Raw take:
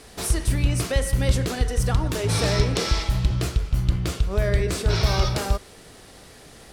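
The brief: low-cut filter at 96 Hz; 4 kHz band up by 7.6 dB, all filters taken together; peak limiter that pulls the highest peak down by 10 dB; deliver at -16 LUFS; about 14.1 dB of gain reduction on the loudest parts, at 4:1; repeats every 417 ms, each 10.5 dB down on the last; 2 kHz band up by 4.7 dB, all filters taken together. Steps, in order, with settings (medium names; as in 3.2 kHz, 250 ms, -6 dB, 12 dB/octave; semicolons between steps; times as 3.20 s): high-pass 96 Hz; peaking EQ 2 kHz +3.5 dB; peaking EQ 4 kHz +8.5 dB; compression 4:1, threshold -35 dBFS; peak limiter -28 dBFS; feedback delay 417 ms, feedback 30%, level -10.5 dB; trim +21.5 dB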